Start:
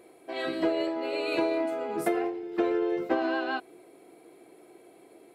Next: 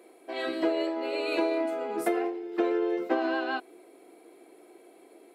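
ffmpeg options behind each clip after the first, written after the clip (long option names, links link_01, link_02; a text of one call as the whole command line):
ffmpeg -i in.wav -af "highpass=frequency=220:width=0.5412,highpass=frequency=220:width=1.3066" out.wav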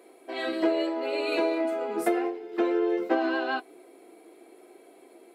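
ffmpeg -i in.wav -af "flanger=delay=7:depth=2.5:regen=-52:speed=0.82:shape=triangular,volume=5.5dB" out.wav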